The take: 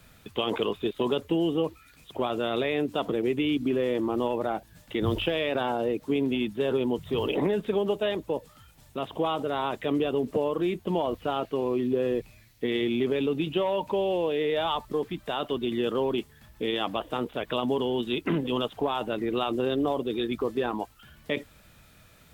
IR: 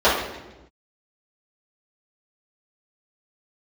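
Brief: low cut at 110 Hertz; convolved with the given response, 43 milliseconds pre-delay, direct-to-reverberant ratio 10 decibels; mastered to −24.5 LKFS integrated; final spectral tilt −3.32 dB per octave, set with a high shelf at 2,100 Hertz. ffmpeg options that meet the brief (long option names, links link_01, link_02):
-filter_complex "[0:a]highpass=110,highshelf=frequency=2100:gain=4.5,asplit=2[link_01][link_02];[1:a]atrim=start_sample=2205,adelay=43[link_03];[link_02][link_03]afir=irnorm=-1:irlink=0,volume=-33.5dB[link_04];[link_01][link_04]amix=inputs=2:normalize=0,volume=3dB"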